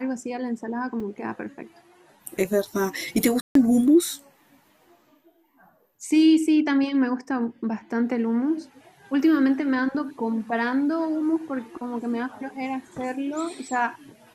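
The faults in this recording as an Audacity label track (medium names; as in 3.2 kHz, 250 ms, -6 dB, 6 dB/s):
1.000000	1.000000	dropout 3.4 ms
3.410000	3.550000	dropout 143 ms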